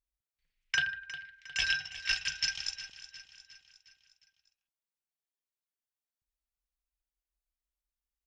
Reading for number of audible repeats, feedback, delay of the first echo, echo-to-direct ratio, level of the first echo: 4, 52%, 358 ms, -12.5 dB, -14.0 dB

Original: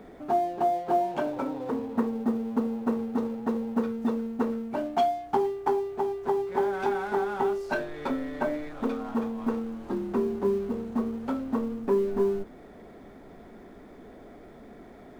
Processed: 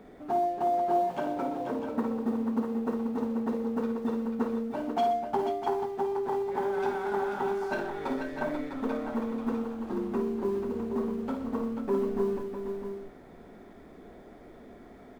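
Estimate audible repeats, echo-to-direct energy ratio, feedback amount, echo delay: 4, -2.0 dB, no regular repeats, 54 ms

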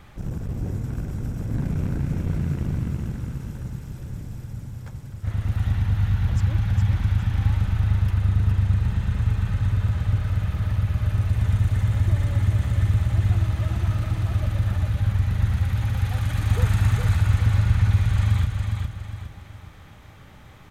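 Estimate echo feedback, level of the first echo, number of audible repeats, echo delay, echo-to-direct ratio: 38%, -4.5 dB, 4, 410 ms, -4.0 dB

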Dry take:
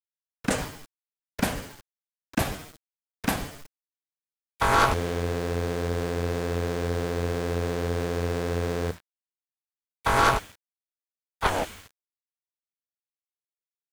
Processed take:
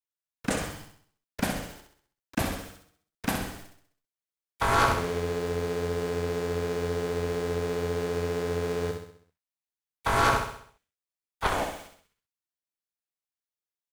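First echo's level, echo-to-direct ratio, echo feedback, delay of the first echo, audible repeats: -6.0 dB, -5.0 dB, 47%, 65 ms, 5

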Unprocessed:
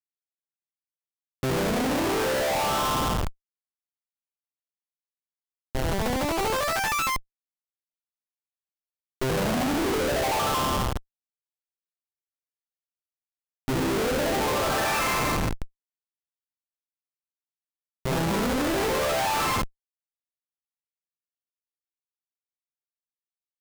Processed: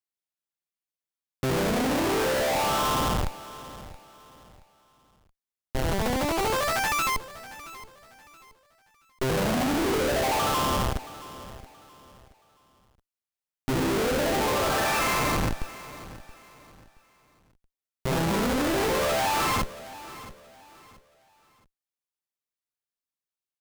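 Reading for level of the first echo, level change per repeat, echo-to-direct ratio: -17.0 dB, -10.0 dB, -16.5 dB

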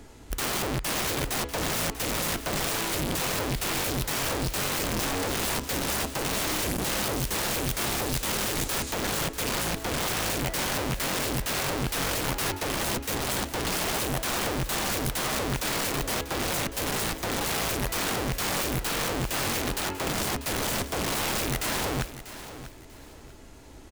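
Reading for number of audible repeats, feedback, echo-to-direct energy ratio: 2, 27%, -13.0 dB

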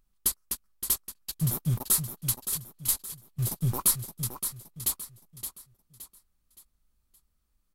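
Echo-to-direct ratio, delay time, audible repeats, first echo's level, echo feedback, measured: -8.5 dB, 569 ms, 4, -9.0 dB, 37%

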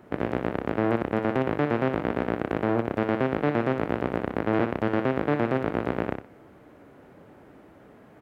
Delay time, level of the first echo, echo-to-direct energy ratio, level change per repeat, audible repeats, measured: 61 ms, -7.5 dB, -7.5 dB, -13.0 dB, 2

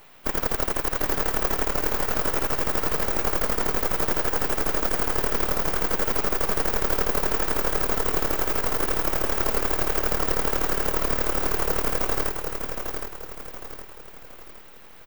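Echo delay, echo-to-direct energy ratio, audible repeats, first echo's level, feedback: 765 ms, -5.0 dB, 4, -6.0 dB, 42%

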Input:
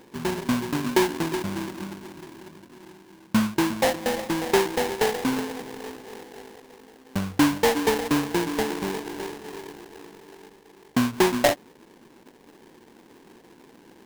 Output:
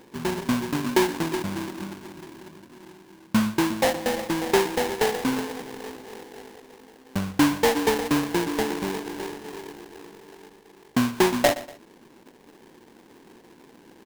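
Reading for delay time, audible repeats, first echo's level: 120 ms, 2, -17.0 dB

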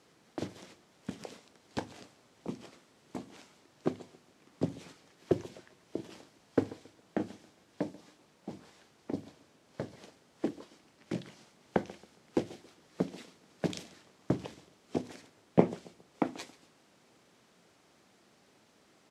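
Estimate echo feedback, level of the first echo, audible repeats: 34%, -20.5 dB, 2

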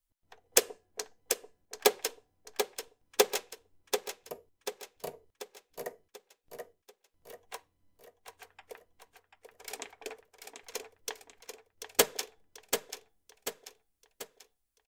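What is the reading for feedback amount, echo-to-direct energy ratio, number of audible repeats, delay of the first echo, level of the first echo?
46%, -6.0 dB, 5, 738 ms, -7.0 dB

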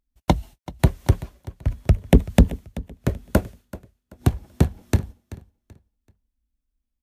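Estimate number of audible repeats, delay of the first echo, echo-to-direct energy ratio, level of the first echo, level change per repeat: 2, 383 ms, -17.5 dB, -18.0 dB, -11.0 dB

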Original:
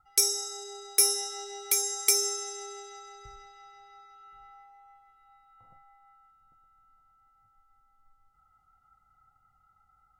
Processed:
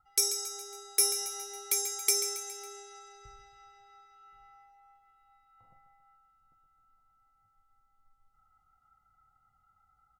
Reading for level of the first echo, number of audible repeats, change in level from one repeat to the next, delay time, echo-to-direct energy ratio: -11.0 dB, 4, -5.0 dB, 138 ms, -9.5 dB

